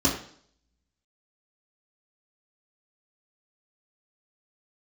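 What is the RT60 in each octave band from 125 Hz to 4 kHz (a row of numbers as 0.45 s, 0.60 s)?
0.60 s, 0.60 s, 0.60 s, 0.55 s, 0.55 s, 0.60 s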